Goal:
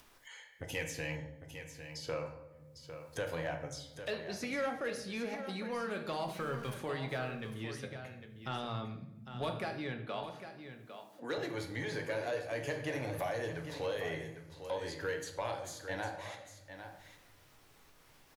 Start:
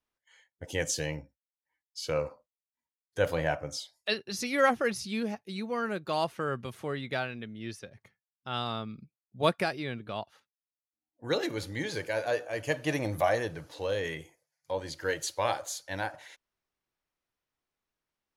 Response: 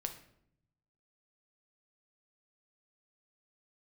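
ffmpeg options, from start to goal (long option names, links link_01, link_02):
-filter_complex "[0:a]asettb=1/sr,asplit=3[link_01][link_02][link_03];[link_01]atrim=end=6.234[link_04];[link_02]atrim=start=6.23:end=6.74,asetpts=PTS-STARTPTS,afade=type=in:duration=0.004:curve=qsin,afade=type=out:start_time=0.506:duration=0.004:curve=qsin,aeval=exprs='val(0)+0.5*0.00562*sgn(val(0))':channel_layout=same[link_05];[link_03]atrim=start=6.736[link_06];[link_04][link_05]acrossfade=duration=0.004:curve1=hsin:curve2=qsin[link_07];[link_07][link_06]acrossfade=duration=0.004:curve1=qsin:curve2=hsin,acrossover=split=610|2000[link_08][link_09][link_10];[link_08]acompressor=threshold=-42dB:ratio=4[link_11];[link_09]acompressor=threshold=-42dB:ratio=4[link_12];[link_10]acompressor=threshold=-50dB:ratio=4[link_13];[link_11][link_12][link_13]amix=inputs=3:normalize=0[link_14];[1:a]atrim=start_sample=2205,asetrate=40572,aresample=44100[link_15];[link_14][link_15]afir=irnorm=-1:irlink=0,acompressor=mode=upward:threshold=-46dB:ratio=2.5,asettb=1/sr,asplit=3[link_16][link_17][link_18];[link_16]atrim=end=0.694[link_19];[link_17]atrim=start=0.69:end=1.16,asetpts=PTS-STARTPTS,afade=type=in:duration=0.004:curve=qsin,afade=type=out:start_time=0.466:duration=0.004:curve=qsin,equalizer=frequency=400:width_type=o:width=0.33:gain=-6,equalizer=frequency=630:width_type=o:width=0.33:gain=-3,equalizer=frequency=2500:width_type=o:width=0.33:gain=11,equalizer=frequency=12500:width_type=o:width=0.33:gain=10[link_20];[link_18]atrim=start=1.156[link_21];[link_19][link_20]acrossfade=duration=0.004:curve1=hsin:curve2=qsin[link_22];[link_22][link_21]acrossfade=duration=0.004:curve1=qsin:curve2=hsin,asoftclip=type=tanh:threshold=-29dB,asettb=1/sr,asplit=3[link_23][link_24][link_25];[link_23]atrim=end=10.074[link_26];[link_24]atrim=start=10.07:end=11.38,asetpts=PTS-STARTPTS,afade=type=in:duration=0.004:curve=qsin,afade=type=out:start_time=1.306:duration=0.004:curve=qsin,highpass=frequency=190:width=0.5412,highpass=frequency=190:width=1.3066[link_27];[link_25]atrim=start=11.376[link_28];[link_26][link_27]acrossfade=duration=0.004:curve1=hsin:curve2=qsin[link_29];[link_29][link_28]acrossfade=duration=0.004:curve1=qsin:curve2=hsin,aecho=1:1:803:0.316,volume=2.5dB"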